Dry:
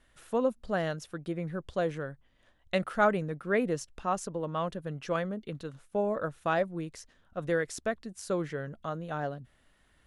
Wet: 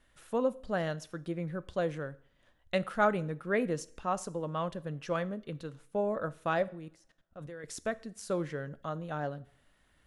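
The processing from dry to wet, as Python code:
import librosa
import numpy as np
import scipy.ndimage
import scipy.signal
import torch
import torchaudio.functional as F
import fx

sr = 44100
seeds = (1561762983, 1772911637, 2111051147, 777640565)

y = fx.level_steps(x, sr, step_db=21, at=(6.68, 7.64))
y = fx.rev_double_slope(y, sr, seeds[0], early_s=0.52, late_s=1.7, knee_db=-27, drr_db=15.5)
y = F.gain(torch.from_numpy(y), -2.0).numpy()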